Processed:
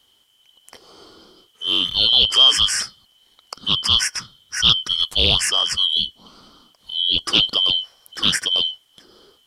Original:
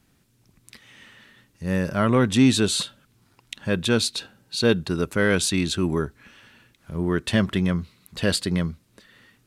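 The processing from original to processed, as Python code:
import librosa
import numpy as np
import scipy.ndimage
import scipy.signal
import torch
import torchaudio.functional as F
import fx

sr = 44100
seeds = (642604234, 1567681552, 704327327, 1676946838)

y = fx.band_shuffle(x, sr, order='2413')
y = fx.doppler_dist(y, sr, depth_ms=0.21)
y = y * librosa.db_to_amplitude(3.5)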